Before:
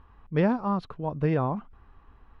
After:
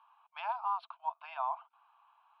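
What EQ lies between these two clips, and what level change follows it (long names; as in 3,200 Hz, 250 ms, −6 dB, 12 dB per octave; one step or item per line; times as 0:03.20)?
Chebyshev high-pass with heavy ripple 650 Hz, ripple 6 dB
high-shelf EQ 3,200 Hz −9.5 dB
phaser with its sweep stopped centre 1,900 Hz, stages 6
+3.5 dB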